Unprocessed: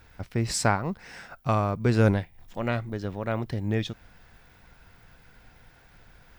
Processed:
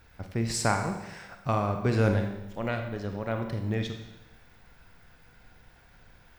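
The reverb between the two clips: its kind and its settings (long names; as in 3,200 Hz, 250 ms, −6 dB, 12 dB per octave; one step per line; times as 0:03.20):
four-comb reverb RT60 0.98 s, combs from 31 ms, DRR 5 dB
level −3 dB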